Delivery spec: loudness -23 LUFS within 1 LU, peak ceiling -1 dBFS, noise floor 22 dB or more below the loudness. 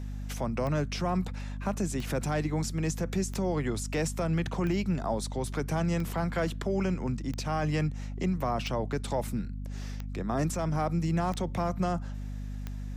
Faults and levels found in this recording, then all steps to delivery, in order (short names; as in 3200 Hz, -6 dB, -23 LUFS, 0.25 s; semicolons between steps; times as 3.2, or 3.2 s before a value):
clicks 10; hum 50 Hz; harmonics up to 250 Hz; hum level -34 dBFS; loudness -31.5 LUFS; peak -17.0 dBFS; loudness target -23.0 LUFS
-> de-click; notches 50/100/150/200/250 Hz; gain +8.5 dB